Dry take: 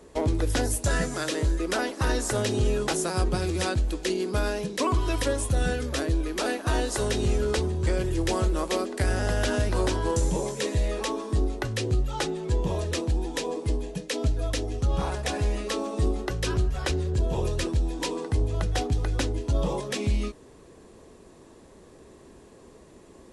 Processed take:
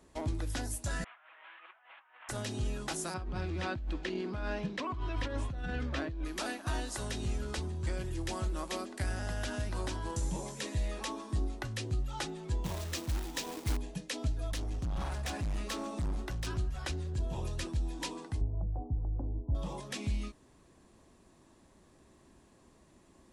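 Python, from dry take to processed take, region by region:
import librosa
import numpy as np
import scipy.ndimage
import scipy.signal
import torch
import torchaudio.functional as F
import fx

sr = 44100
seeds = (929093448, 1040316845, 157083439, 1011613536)

y = fx.chain(x, sr, fx.delta_mod(bps=16000, step_db=-39.5),
    fx.highpass(hz=880.0, slope=24),
    fx.over_compress(threshold_db=-45.0, ratio=-0.5), at=(1.04, 2.29))
y = fx.chain(y, sr, fx.lowpass(hz=3000.0, slope=12),
    fx.over_compress(threshold_db=-28.0, ratio=-1.0), at=(3.14, 6.25))
y = fx.chain(y, sr, fx.lowpass(hz=8900.0, slope=12),
    fx.high_shelf(hz=3900.0, db=5.5),
    fx.quant_companded(bits=4), at=(12.64, 13.77))
y = fx.chain(y, sr, fx.low_shelf(hz=61.0, db=7.0),
    fx.clip_hard(threshold_db=-25.0), at=(14.51, 16.47))
y = fx.chain(y, sr, fx.steep_lowpass(hz=900.0, slope=36),
    fx.tilt_eq(slope=-1.5), at=(18.41, 19.55))
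y = fx.peak_eq(y, sr, hz=450.0, db=-11.0, octaves=0.5)
y = fx.rider(y, sr, range_db=10, speed_s=0.5)
y = F.gain(torch.from_numpy(y), -8.5).numpy()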